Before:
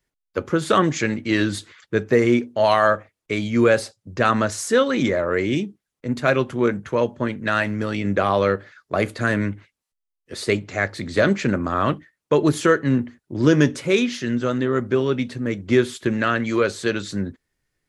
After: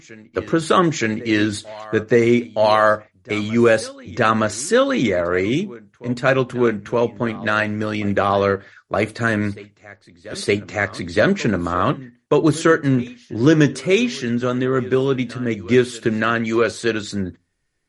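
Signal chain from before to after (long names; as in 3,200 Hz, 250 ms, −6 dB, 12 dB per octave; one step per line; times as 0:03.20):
backwards echo 919 ms −20 dB
on a send at −20 dB: convolution reverb RT60 0.25 s, pre-delay 3 ms
on the sum: level +2.5 dB
MP3 48 kbit/s 48,000 Hz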